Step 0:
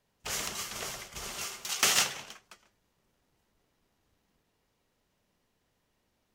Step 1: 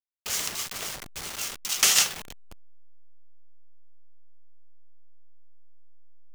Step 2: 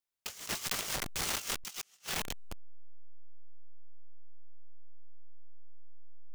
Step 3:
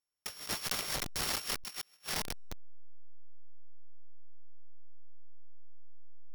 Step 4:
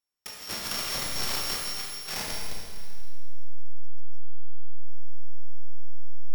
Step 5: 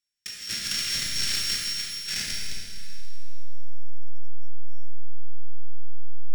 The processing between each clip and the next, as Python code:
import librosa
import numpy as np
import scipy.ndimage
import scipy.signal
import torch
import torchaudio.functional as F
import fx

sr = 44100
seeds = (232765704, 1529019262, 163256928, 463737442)

y1 = fx.delta_hold(x, sr, step_db=-34.0)
y1 = fx.high_shelf(y1, sr, hz=2500.0, db=9.5)
y1 = y1 * librosa.db_to_amplitude(-1.5)
y2 = fx.over_compress(y1, sr, threshold_db=-37.0, ratio=-0.5)
y3 = np.r_[np.sort(y2[:len(y2) // 8 * 8].reshape(-1, 8), axis=1).ravel(), y2[len(y2) // 8 * 8:]]
y4 = fx.rev_schroeder(y3, sr, rt60_s=2.0, comb_ms=27, drr_db=-2.5)
y5 = fx.curve_eq(y4, sr, hz=(190.0, 1000.0, 1600.0, 8100.0, 13000.0), db=(0, -19, 3, 6, -5))
y5 = fx.echo_feedback(y5, sr, ms=373, feedback_pct=43, wet_db=-19)